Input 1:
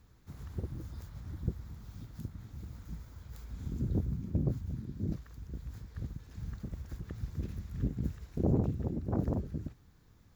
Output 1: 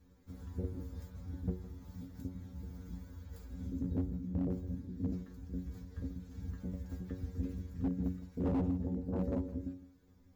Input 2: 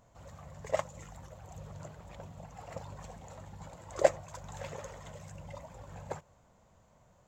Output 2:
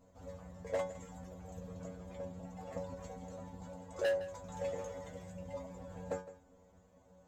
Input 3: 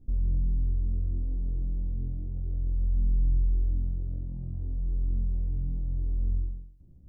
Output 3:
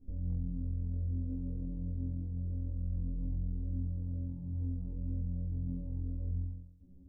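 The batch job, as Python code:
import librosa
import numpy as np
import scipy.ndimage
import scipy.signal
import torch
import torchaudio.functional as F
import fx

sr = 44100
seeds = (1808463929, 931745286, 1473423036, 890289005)

p1 = fx.stiff_resonator(x, sr, f0_hz=90.0, decay_s=0.34, stiffness=0.002)
p2 = fx.rider(p1, sr, range_db=4, speed_s=0.5)
p3 = p1 + (p2 * 10.0 ** (2.0 / 20.0))
p4 = fx.doubler(p3, sr, ms=16.0, db=-7.5)
p5 = fx.small_body(p4, sr, hz=(260.0, 480.0), ring_ms=45, db=14)
p6 = np.clip(p5, -10.0 ** (-24.0 / 20.0), 10.0 ** (-24.0 / 20.0))
p7 = fx.peak_eq(p6, sr, hz=65.0, db=9.0, octaves=0.7)
p8 = p7 + fx.echo_single(p7, sr, ms=161, db=-16.0, dry=0)
y = p8 * 10.0 ** (-5.0 / 20.0)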